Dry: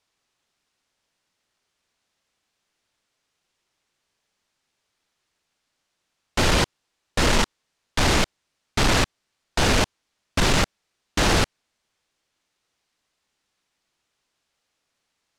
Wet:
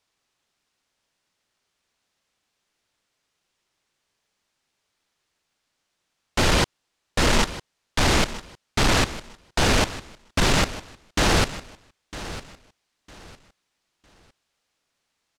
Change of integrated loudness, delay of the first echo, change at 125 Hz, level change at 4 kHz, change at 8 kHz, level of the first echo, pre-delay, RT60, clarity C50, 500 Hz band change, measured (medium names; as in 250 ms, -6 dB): 0.0 dB, 955 ms, 0.0 dB, 0.0 dB, 0.0 dB, -15.0 dB, no reverb, no reverb, no reverb, 0.0 dB